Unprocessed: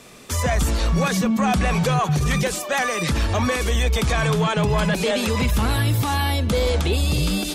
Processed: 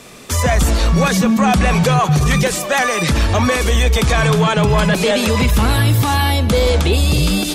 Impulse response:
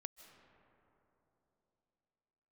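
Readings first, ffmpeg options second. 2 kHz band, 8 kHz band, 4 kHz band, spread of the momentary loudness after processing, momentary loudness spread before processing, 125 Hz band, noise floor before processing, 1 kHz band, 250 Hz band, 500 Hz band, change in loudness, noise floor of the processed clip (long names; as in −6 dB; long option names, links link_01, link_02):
+6.0 dB, +6.0 dB, +6.0 dB, 2 LU, 2 LU, +6.0 dB, −31 dBFS, +6.0 dB, +6.0 dB, +6.0 dB, +6.0 dB, −24 dBFS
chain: -filter_complex "[0:a]asplit=2[link_01][link_02];[1:a]atrim=start_sample=2205,afade=type=out:start_time=0.3:duration=0.01,atrim=end_sample=13671[link_03];[link_02][link_03]afir=irnorm=-1:irlink=0,volume=8.5dB[link_04];[link_01][link_04]amix=inputs=2:normalize=0,volume=-1.5dB"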